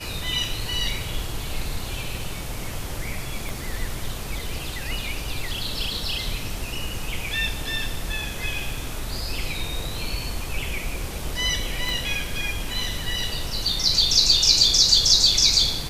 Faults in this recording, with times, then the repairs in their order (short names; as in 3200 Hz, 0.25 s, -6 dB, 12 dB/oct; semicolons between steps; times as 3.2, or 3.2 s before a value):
3.49 pop
11.89 pop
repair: de-click